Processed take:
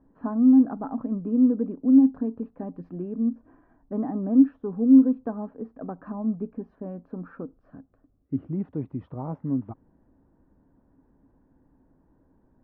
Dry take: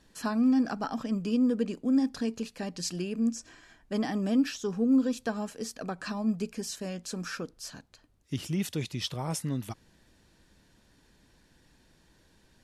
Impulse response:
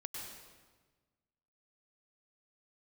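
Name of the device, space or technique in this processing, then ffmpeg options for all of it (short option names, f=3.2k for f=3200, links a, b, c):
under water: -filter_complex "[0:a]lowpass=f=1.1k:w=0.5412,lowpass=f=1.1k:w=1.3066,equalizer=f=270:t=o:w=0.27:g=10,asettb=1/sr,asplit=3[a][b][c];[a]atrim=end=7.554[d];[b]atrim=start=7.55:end=8.48,asetpts=PTS-STARTPTS,afade=t=in:d=0.004:c=qsin,afade=t=out:st=0.926:d=0.004:c=qsin,equalizer=f=920:t=o:w=0.2:g=-13.5[e];[c]atrim=start=8.476[f];[d][e]acrossfade=d=0.004:c1=hsin:c2=qsin[g];[g][f]acrossfade=d=0.004:c1=qsin:c2=hsin"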